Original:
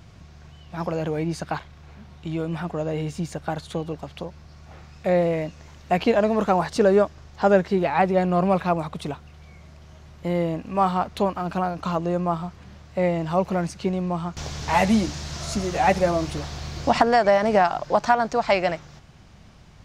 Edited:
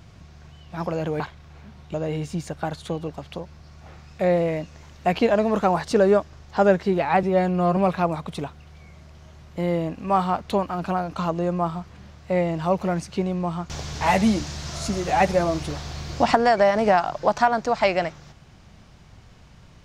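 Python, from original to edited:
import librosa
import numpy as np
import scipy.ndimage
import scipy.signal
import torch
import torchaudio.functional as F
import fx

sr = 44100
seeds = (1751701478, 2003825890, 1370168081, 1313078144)

y = fx.edit(x, sr, fx.cut(start_s=1.2, length_s=0.33),
    fx.cut(start_s=2.27, length_s=0.52),
    fx.stretch_span(start_s=8.08, length_s=0.36, factor=1.5), tone=tone)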